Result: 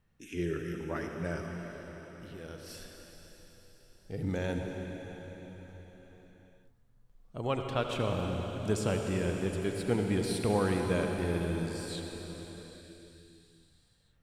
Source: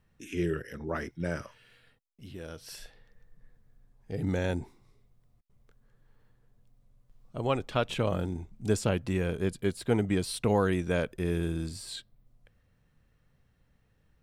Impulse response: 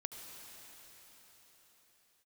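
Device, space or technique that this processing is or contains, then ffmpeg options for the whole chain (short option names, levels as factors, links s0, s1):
cathedral: -filter_complex "[1:a]atrim=start_sample=2205[s0];[0:a][s0]afir=irnorm=-1:irlink=0"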